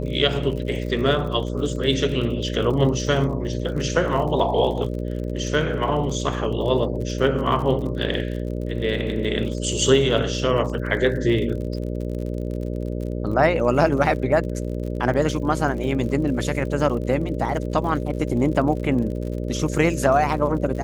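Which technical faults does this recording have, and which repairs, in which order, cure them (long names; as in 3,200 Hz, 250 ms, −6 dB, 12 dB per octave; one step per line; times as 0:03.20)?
mains buzz 60 Hz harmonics 10 −27 dBFS
surface crackle 51 per second −31 dBFS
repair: click removal
hum removal 60 Hz, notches 10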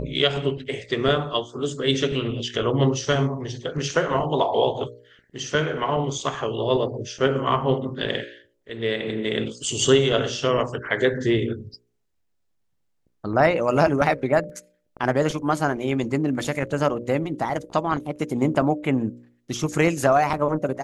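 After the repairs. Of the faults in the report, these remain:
none of them is left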